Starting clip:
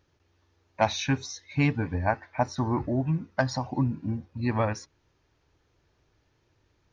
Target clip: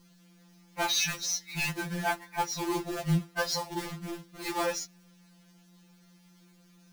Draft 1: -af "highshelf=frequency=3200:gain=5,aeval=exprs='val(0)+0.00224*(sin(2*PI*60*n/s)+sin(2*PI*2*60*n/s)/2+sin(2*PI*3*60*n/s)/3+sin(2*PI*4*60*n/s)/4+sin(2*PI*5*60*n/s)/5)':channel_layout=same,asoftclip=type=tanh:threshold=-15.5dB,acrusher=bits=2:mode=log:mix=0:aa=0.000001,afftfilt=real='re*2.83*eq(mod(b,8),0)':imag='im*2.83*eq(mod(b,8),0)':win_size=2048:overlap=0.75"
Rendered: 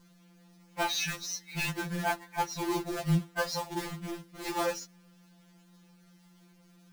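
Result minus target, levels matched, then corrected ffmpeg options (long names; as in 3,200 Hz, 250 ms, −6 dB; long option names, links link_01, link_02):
8,000 Hz band −3.5 dB
-af "highshelf=frequency=3200:gain=13,aeval=exprs='val(0)+0.00224*(sin(2*PI*60*n/s)+sin(2*PI*2*60*n/s)/2+sin(2*PI*3*60*n/s)/3+sin(2*PI*4*60*n/s)/4+sin(2*PI*5*60*n/s)/5)':channel_layout=same,asoftclip=type=tanh:threshold=-15.5dB,acrusher=bits=2:mode=log:mix=0:aa=0.000001,afftfilt=real='re*2.83*eq(mod(b,8),0)':imag='im*2.83*eq(mod(b,8),0)':win_size=2048:overlap=0.75"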